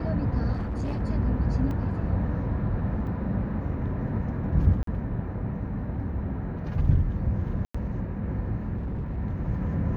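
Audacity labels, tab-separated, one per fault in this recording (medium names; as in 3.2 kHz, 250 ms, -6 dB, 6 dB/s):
0.520000	1.020000	clipped -26 dBFS
1.710000	1.710000	dropout 2 ms
3.070000	3.070000	dropout 3.1 ms
4.830000	4.870000	dropout 43 ms
7.650000	7.750000	dropout 95 ms
8.760000	9.190000	clipped -27.5 dBFS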